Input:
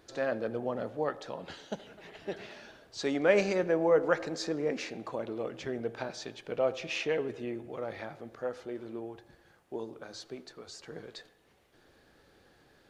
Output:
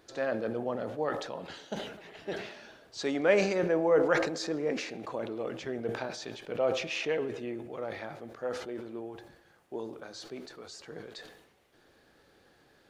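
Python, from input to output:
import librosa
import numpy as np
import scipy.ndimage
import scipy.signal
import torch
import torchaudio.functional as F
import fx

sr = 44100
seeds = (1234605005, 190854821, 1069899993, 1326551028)

y = fx.low_shelf(x, sr, hz=110.0, db=-5.5)
y = fx.sustainer(y, sr, db_per_s=65.0)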